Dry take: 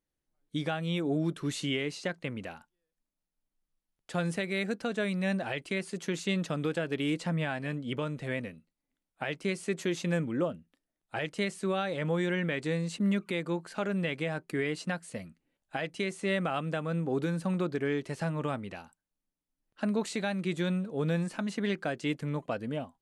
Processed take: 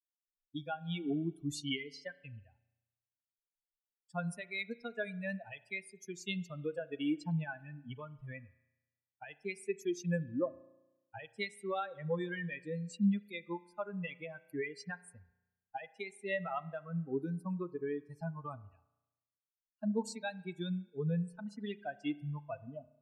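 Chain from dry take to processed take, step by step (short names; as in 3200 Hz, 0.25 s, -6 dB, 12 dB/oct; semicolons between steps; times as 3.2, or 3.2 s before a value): per-bin expansion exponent 3; spring tank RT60 1 s, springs 34 ms, chirp 70 ms, DRR 18 dB; gain +1 dB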